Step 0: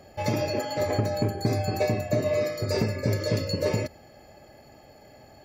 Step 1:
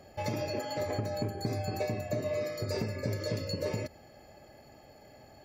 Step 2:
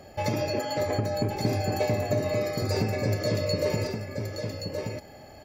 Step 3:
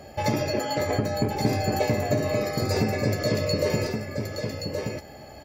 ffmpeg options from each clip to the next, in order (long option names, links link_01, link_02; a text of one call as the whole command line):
ffmpeg -i in.wav -af "acompressor=threshold=-29dB:ratio=2,volume=-3.5dB" out.wav
ffmpeg -i in.wav -af "aecho=1:1:1124:0.531,volume=6dB" out.wav
ffmpeg -i in.wav -filter_complex "[0:a]asplit=2[link_01][link_02];[link_02]adelay=14,volume=-8dB[link_03];[link_01][link_03]amix=inputs=2:normalize=0,volume=3dB" out.wav